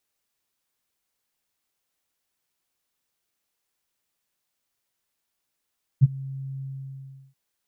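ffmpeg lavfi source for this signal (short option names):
-f lavfi -i "aevalsrc='0.398*sin(2*PI*135*t)':d=1.331:s=44100,afade=t=in:d=0.027,afade=t=out:st=0.027:d=0.028:silence=0.0708,afade=t=out:st=0.61:d=0.721"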